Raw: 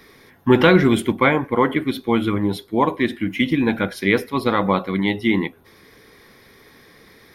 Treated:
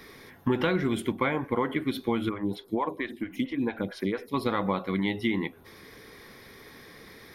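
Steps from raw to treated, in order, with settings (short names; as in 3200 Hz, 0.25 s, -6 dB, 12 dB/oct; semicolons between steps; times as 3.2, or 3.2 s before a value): compressor 4:1, threshold -25 dBFS, peak gain reduction 14 dB; 2.29–4.34 photocell phaser 4.4 Hz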